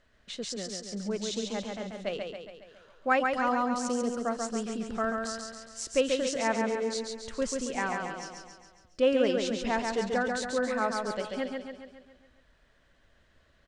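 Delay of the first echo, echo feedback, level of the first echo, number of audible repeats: 138 ms, 55%, −4.0 dB, 6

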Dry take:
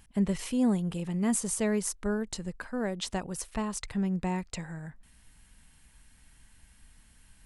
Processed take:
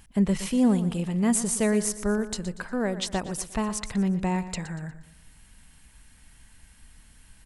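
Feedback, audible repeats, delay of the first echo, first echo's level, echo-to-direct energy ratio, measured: 41%, 3, 119 ms, −13.5 dB, −12.5 dB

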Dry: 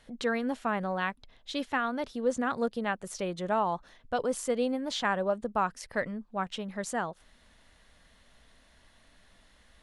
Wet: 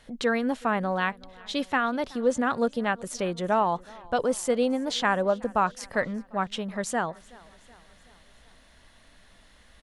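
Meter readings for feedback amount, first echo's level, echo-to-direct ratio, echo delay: 56%, −23.5 dB, −22.0 dB, 374 ms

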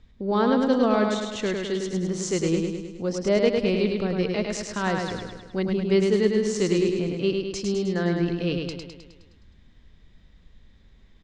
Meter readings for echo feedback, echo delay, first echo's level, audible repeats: 57%, 104 ms, −4.0 dB, 7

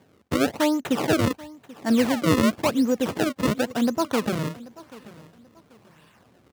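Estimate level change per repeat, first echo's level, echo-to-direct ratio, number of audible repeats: −11.0 dB, −20.0 dB, −19.5 dB, 2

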